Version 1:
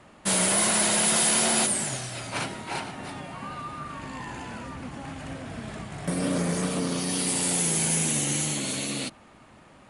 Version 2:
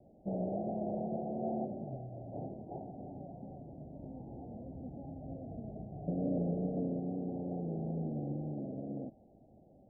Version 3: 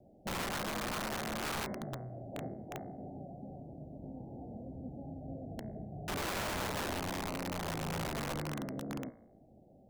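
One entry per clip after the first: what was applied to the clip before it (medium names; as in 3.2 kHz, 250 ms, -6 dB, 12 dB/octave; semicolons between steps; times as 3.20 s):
steep low-pass 770 Hz 96 dB/octave; trim -6.5 dB
integer overflow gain 32.5 dB; de-hum 57.4 Hz, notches 38; trim +1 dB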